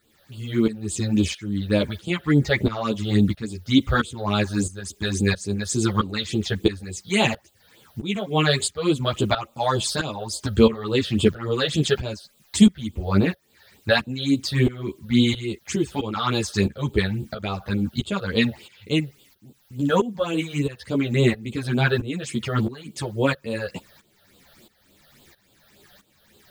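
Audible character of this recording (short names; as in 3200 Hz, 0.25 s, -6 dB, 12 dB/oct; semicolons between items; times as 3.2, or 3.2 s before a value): a quantiser's noise floor 10-bit, dither triangular; phasing stages 8, 3.5 Hz, lowest notch 280–1900 Hz; tremolo saw up 1.5 Hz, depth 85%; a shimmering, thickened sound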